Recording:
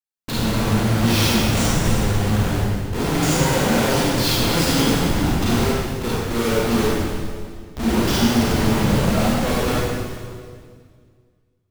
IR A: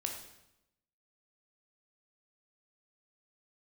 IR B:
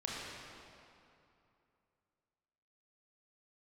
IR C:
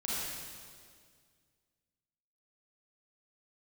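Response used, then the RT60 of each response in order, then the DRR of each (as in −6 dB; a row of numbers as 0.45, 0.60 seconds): C; 0.90, 2.7, 2.0 seconds; 2.0, −5.0, −7.5 decibels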